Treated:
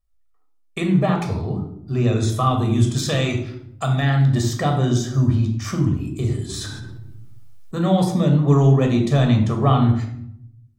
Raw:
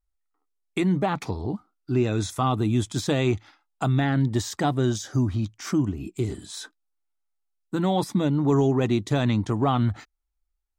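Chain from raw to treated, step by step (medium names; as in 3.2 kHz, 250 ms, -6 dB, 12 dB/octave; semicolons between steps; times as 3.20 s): 2.96–4.29 s: tilt shelf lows -4 dB, about 1.2 kHz; reverberation RT60 0.70 s, pre-delay 14 ms, DRR 3 dB; 6.49–7.75 s: level flattener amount 70%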